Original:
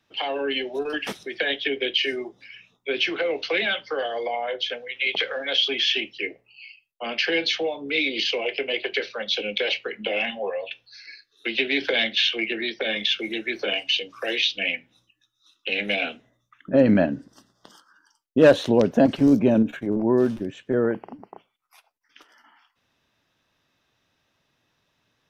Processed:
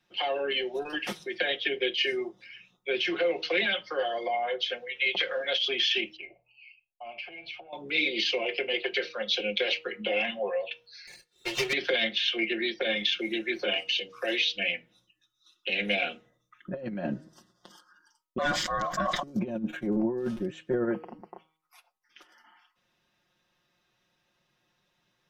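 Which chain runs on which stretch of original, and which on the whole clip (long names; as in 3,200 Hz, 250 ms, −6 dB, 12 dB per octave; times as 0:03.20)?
0:06.16–0:07.73: drawn EQ curve 120 Hz 0 dB, 220 Hz −13 dB, 390 Hz −4 dB, 560 Hz +15 dB, 820 Hz +2 dB, 1,500 Hz −16 dB, 2,200 Hz +4 dB, 3,700 Hz −19 dB, 7,500 Hz −6 dB + downward compressor 4 to 1, threshold −28 dBFS + phaser with its sweep stopped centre 1,900 Hz, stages 6
0:11.07–0:11.73: lower of the sound and its delayed copy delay 2.2 ms + high-pass filter 100 Hz 6 dB per octave
0:18.38–0:19.23: phaser with its sweep stopped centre 2,400 Hz, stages 8 + ring modulation 870 Hz + level that may fall only so fast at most 40 dB per second
whole clip: hum removal 158.6 Hz, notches 8; compressor whose output falls as the input rises −22 dBFS, ratio −0.5; comb filter 5.6 ms, depth 75%; level −6 dB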